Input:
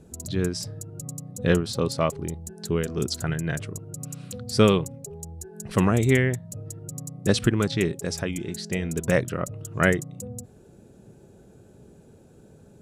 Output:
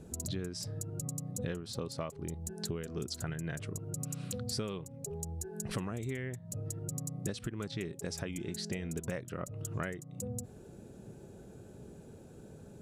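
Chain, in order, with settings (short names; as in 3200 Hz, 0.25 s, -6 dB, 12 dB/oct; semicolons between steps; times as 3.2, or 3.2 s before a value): compressor 16:1, threshold -34 dBFS, peak gain reduction 22.5 dB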